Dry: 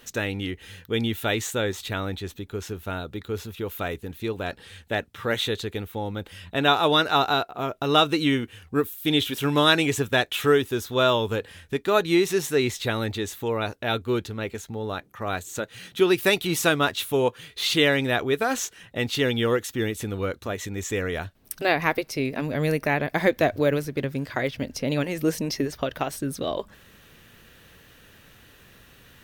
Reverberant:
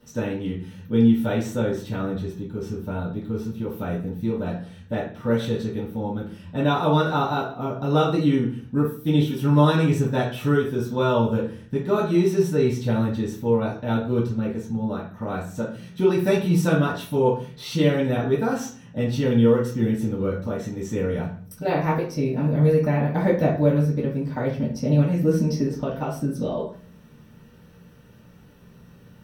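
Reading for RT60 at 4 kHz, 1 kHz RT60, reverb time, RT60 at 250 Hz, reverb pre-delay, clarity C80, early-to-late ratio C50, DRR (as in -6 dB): 0.40 s, 0.40 s, 0.45 s, 0.75 s, 3 ms, 11.5 dB, 5.5 dB, -9.5 dB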